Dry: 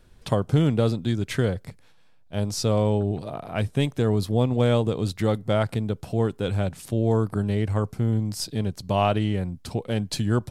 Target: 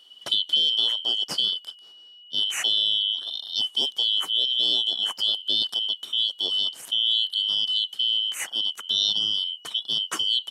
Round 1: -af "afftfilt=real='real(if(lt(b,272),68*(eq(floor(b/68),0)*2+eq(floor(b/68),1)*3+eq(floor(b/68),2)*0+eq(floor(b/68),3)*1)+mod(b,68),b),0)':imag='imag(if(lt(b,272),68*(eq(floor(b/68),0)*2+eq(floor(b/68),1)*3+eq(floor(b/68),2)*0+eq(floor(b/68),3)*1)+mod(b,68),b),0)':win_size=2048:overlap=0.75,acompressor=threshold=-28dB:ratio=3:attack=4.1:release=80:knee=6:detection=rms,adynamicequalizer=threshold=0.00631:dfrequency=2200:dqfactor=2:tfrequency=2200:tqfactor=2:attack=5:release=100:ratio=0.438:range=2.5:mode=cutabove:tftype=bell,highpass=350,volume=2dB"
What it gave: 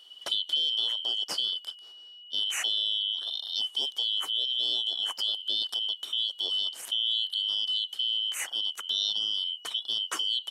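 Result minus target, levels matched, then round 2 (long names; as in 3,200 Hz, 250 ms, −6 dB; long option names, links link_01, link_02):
125 Hz band −9.5 dB; downward compressor: peak gain reduction +6.5 dB
-af "afftfilt=real='real(if(lt(b,272),68*(eq(floor(b/68),0)*2+eq(floor(b/68),1)*3+eq(floor(b/68),2)*0+eq(floor(b/68),3)*1)+mod(b,68),b),0)':imag='imag(if(lt(b,272),68*(eq(floor(b/68),0)*2+eq(floor(b/68),1)*3+eq(floor(b/68),2)*0+eq(floor(b/68),3)*1)+mod(b,68),b),0)':win_size=2048:overlap=0.75,acompressor=threshold=-18.5dB:ratio=3:attack=4.1:release=80:knee=6:detection=rms,adynamicequalizer=threshold=0.00631:dfrequency=2200:dqfactor=2:tfrequency=2200:tqfactor=2:attack=5:release=100:ratio=0.438:range=2.5:mode=cutabove:tftype=bell,highpass=170,volume=2dB"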